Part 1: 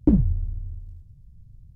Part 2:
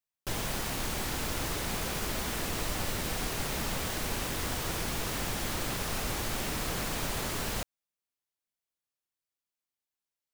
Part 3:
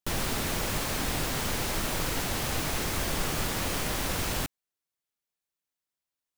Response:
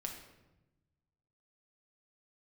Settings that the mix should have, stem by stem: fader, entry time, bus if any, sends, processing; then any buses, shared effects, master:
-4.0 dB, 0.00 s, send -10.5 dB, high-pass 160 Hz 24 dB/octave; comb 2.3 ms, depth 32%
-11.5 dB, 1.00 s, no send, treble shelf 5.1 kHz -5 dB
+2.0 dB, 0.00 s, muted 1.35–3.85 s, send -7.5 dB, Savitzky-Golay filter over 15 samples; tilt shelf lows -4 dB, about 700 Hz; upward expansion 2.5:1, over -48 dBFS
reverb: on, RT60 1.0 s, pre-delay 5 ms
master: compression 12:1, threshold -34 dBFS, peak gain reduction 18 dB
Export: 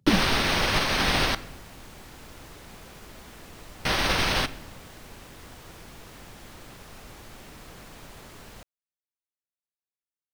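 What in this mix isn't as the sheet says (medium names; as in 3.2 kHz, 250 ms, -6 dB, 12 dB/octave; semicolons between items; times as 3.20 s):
stem 3 +2.0 dB -> +9.0 dB; master: missing compression 12:1, threshold -34 dBFS, peak gain reduction 18 dB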